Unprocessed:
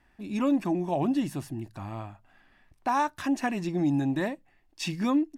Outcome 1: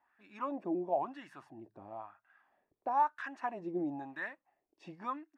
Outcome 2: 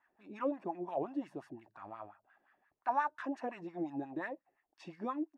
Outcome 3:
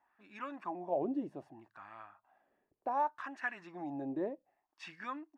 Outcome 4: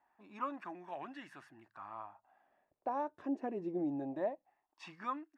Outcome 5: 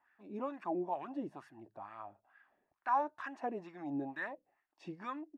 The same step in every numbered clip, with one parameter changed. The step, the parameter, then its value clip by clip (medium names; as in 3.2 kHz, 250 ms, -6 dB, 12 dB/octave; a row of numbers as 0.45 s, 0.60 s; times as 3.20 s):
wah-wah, rate: 1 Hz, 5.7 Hz, 0.65 Hz, 0.22 Hz, 2.2 Hz